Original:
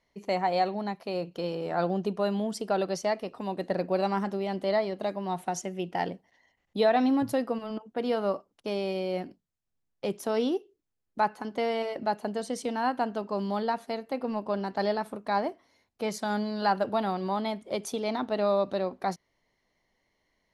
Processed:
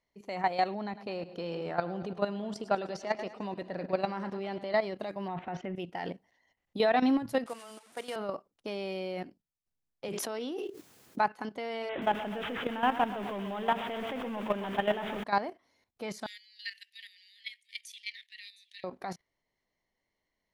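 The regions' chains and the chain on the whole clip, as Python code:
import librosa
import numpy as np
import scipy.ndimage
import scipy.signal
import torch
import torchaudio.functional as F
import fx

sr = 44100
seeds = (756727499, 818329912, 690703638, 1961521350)

y = fx.chain(x, sr, fx.air_absorb(metres=53.0),
    fx.echo_split(split_hz=510.0, low_ms=139, high_ms=104, feedback_pct=52, wet_db=-13.0), at=(0.75, 4.76))
y = fx.chain(y, sr, fx.lowpass(hz=2800.0, slope=24),
    fx.transient(attack_db=-3, sustain_db=9), at=(5.28, 5.76))
y = fx.chain(y, sr, fx.delta_mod(bps=64000, step_db=-42.5),
    fx.highpass(hz=980.0, slope=6),
    fx.peak_eq(hz=9100.0, db=9.0, octaves=0.32), at=(7.46, 8.16))
y = fx.chain(y, sr, fx.highpass(hz=130.0, slope=12),
    fx.low_shelf(hz=170.0, db=-4.5),
    fx.env_flatten(amount_pct=70), at=(10.08, 11.19))
y = fx.chain(y, sr, fx.zero_step(step_db=-34.0),
    fx.resample_bad(factor=6, down='none', up='filtered'),
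    fx.echo_crushed(ms=128, feedback_pct=55, bits=8, wet_db=-8.5), at=(11.89, 15.24))
y = fx.chain(y, sr, fx.cheby1_highpass(hz=1800.0, order=8),
    fx.echo_single(ms=712, db=-18.5), at=(16.26, 18.84))
y = fx.dynamic_eq(y, sr, hz=2100.0, q=0.8, threshold_db=-46.0, ratio=4.0, max_db=5)
y = fx.level_steps(y, sr, step_db=12)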